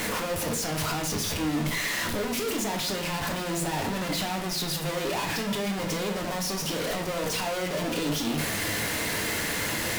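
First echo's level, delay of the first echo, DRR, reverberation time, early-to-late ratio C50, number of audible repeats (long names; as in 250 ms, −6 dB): no echo audible, no echo audible, 2.0 dB, 0.55 s, 8.5 dB, no echo audible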